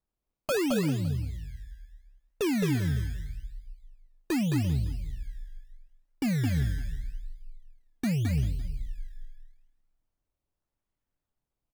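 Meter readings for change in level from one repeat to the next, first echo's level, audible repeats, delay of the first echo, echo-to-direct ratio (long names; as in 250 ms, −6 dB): repeats not evenly spaced, −5.0 dB, 4, 215 ms, −3.0 dB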